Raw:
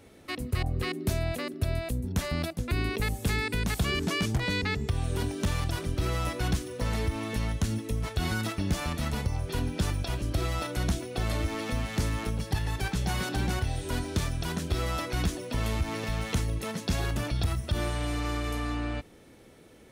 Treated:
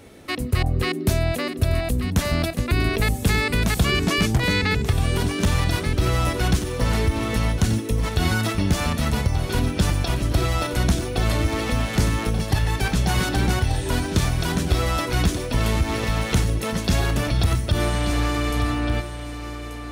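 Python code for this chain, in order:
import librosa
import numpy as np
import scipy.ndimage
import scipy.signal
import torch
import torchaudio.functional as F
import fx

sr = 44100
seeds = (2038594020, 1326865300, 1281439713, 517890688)

y = x + 10.0 ** (-10.0 / 20.0) * np.pad(x, (int(1184 * sr / 1000.0), 0))[:len(x)]
y = y * librosa.db_to_amplitude(8.0)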